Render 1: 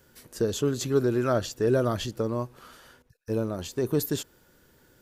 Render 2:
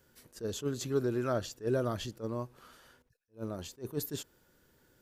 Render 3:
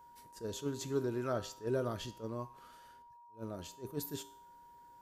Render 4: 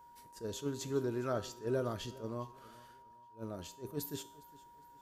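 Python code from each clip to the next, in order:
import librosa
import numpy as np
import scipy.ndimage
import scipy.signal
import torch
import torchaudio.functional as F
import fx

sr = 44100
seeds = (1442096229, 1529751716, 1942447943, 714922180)

y1 = fx.attack_slew(x, sr, db_per_s=300.0)
y1 = y1 * 10.0 ** (-7.0 / 20.0)
y2 = fx.comb_fb(y1, sr, f0_hz=57.0, decay_s=0.55, harmonics='odd', damping=0.0, mix_pct=60)
y2 = y2 + 10.0 ** (-58.0 / 20.0) * np.sin(2.0 * np.pi * 950.0 * np.arange(len(y2)) / sr)
y2 = y2 * 10.0 ** (2.5 / 20.0)
y3 = fx.echo_feedback(y2, sr, ms=410, feedback_pct=35, wet_db=-21.0)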